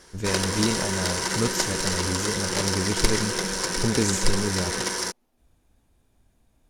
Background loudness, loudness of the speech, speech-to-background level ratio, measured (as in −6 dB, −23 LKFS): −25.5 LKFS, −29.0 LKFS, −3.5 dB